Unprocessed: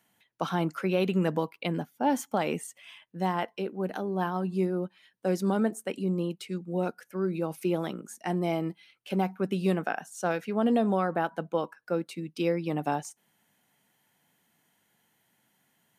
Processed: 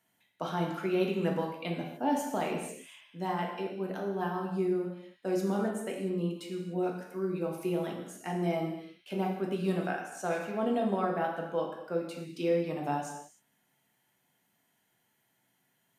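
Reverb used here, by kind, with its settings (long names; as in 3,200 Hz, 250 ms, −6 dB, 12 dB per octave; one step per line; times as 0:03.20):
reverb whose tail is shaped and stops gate 320 ms falling, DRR −0.5 dB
level −6.5 dB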